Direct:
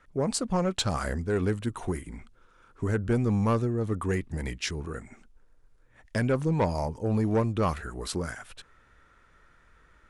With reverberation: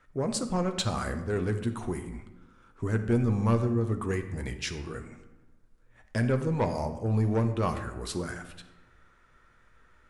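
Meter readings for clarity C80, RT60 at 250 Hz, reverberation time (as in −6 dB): 12.0 dB, 1.4 s, 1.0 s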